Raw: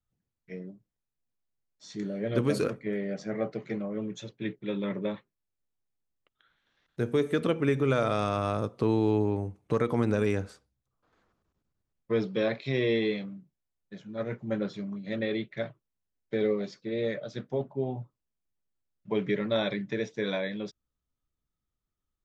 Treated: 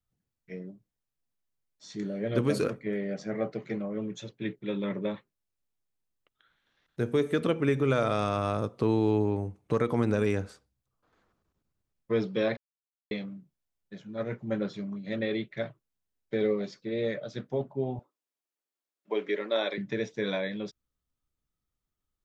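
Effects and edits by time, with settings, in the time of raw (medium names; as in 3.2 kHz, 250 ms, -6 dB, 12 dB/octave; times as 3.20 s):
12.57–13.11 s: mute
17.99–19.78 s: high-pass 310 Hz 24 dB/octave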